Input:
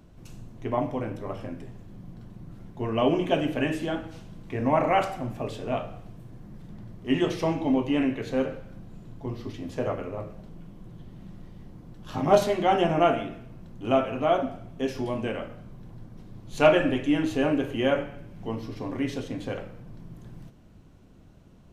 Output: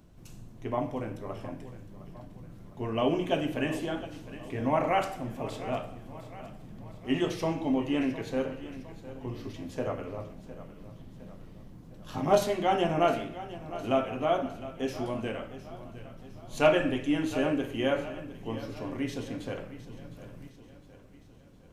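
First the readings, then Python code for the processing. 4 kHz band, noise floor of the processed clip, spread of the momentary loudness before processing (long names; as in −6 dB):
−2.5 dB, −52 dBFS, 24 LU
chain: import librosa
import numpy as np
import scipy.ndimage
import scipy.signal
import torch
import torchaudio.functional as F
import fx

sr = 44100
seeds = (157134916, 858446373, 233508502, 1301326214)

p1 = fx.high_shelf(x, sr, hz=5900.0, db=6.0)
p2 = p1 + fx.echo_feedback(p1, sr, ms=709, feedback_pct=52, wet_db=-15, dry=0)
y = F.gain(torch.from_numpy(p2), -4.0).numpy()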